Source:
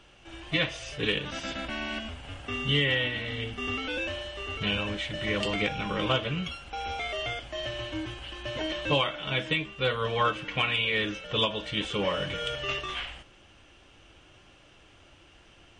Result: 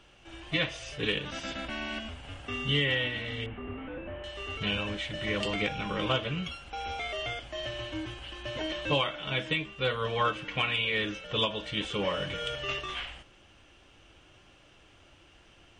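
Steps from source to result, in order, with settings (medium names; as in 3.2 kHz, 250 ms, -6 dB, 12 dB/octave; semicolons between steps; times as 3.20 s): 3.46–4.24 s: one-bit delta coder 16 kbps, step -46.5 dBFS; trim -2 dB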